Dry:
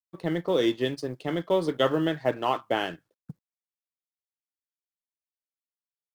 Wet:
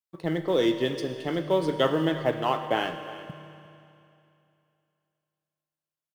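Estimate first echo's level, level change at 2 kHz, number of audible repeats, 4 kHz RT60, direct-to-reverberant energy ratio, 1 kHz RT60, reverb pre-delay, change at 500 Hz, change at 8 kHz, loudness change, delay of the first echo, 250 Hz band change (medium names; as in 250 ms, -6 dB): -18.0 dB, +0.5 dB, 1, 2.6 s, 7.5 dB, 2.7 s, 34 ms, +0.5 dB, no reading, +0.5 dB, 355 ms, +0.5 dB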